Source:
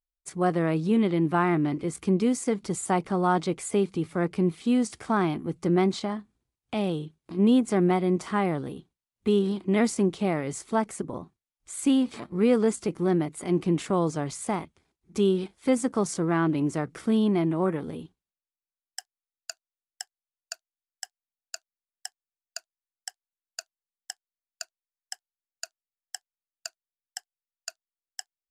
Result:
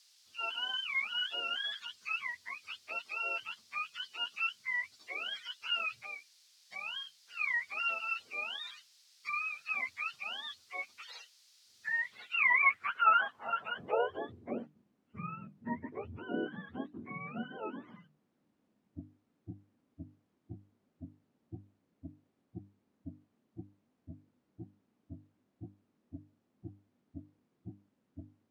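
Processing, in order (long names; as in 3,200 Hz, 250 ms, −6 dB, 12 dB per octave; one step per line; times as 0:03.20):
frequency axis turned over on the octave scale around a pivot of 700 Hz
low-shelf EQ 140 Hz −8.5 dB
mains-hum notches 50/100/150/200/250/300 Hz
bit-depth reduction 10 bits, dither triangular
band-pass filter sweep 4,700 Hz → 230 Hz, 0:11.86–0:14.75
level +4.5 dB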